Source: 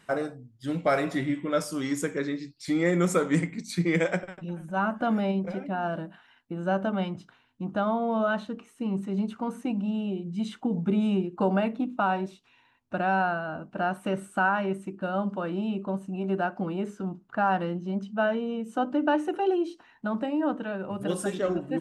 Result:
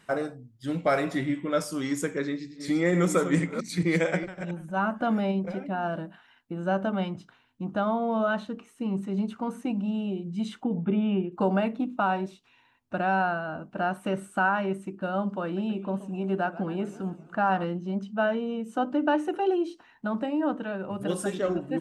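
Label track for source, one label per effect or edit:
2.250000	4.540000	chunks repeated in reverse 226 ms, level -9.5 dB
10.640000	11.320000	Chebyshev low-pass 3.6 kHz, order 10
15.430000	17.640000	modulated delay 132 ms, feedback 61%, depth 196 cents, level -17 dB

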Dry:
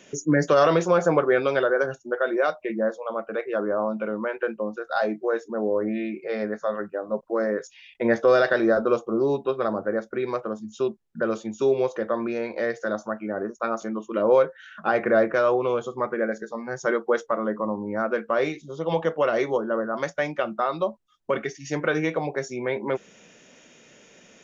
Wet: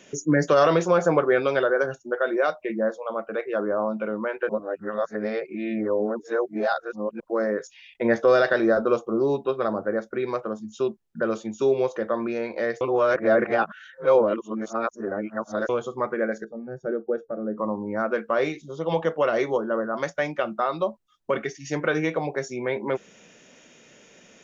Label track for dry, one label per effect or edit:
4.490000	7.200000	reverse
12.810000	15.690000	reverse
16.440000	17.580000	boxcar filter over 43 samples

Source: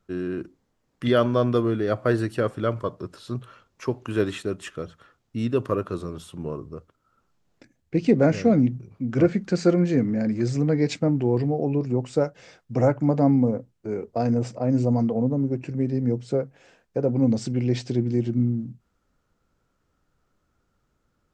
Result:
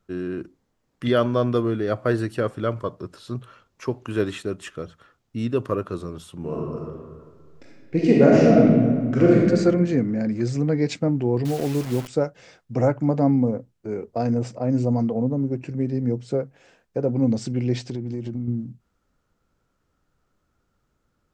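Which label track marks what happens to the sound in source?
6.380000	9.430000	reverb throw, RT60 1.7 s, DRR -4 dB
11.450000	12.080000	word length cut 6-bit, dither none
17.820000	18.480000	compression, threshold -25 dBFS

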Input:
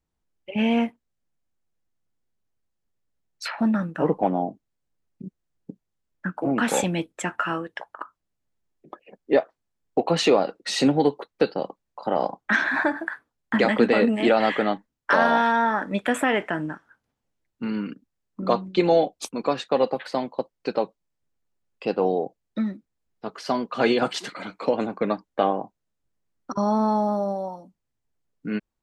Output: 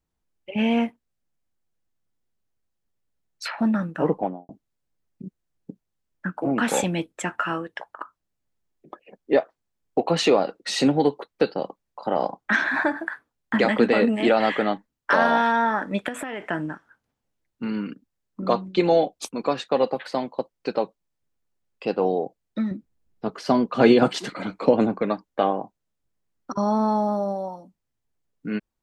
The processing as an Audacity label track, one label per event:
4.090000	4.490000	studio fade out
16.080000	16.490000	compression 5:1, threshold -28 dBFS
22.710000	25.010000	bass shelf 490 Hz +9.5 dB

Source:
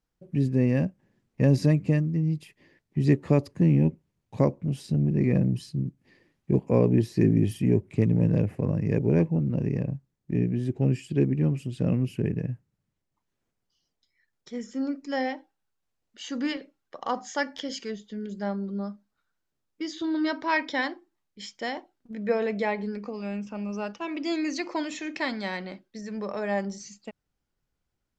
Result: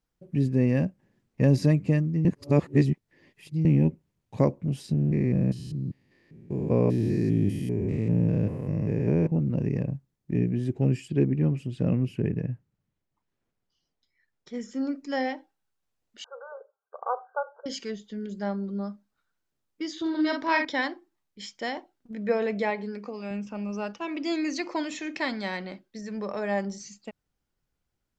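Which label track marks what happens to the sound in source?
2.250000	3.650000	reverse
4.930000	9.320000	spectrogram pixelated in time every 200 ms
11.080000	14.540000	low-pass 4 kHz 6 dB/octave
16.240000	17.660000	brick-wall FIR band-pass 400–1600 Hz
20.010000	20.650000	doubling 46 ms -4 dB
22.700000	23.310000	bass shelf 130 Hz -11.5 dB

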